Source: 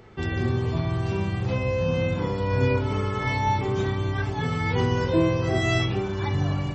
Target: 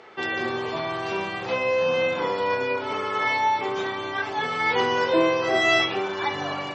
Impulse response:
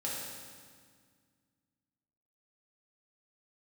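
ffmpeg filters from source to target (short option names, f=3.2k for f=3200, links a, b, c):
-filter_complex "[0:a]asettb=1/sr,asplit=3[a][b][c];[a]atrim=end=2.544[d];[b]atrim=start=2.54:end=4.6,asetpts=PTS-STARTPTS,afade=t=in:d=0.004:c=qsin,afade=t=out:st=2.056:d=0.004:c=qsin,acompressor=threshold=-23dB:ratio=6[e];[c]atrim=start=4.596[f];[d][e]acrossfade=d=0.004:c1=hsin:c2=qsin[g];[g][f]acrossfade=d=0.004:c1=qsin:c2=hsin,highpass=530,lowpass=5.1k,volume=7.5dB"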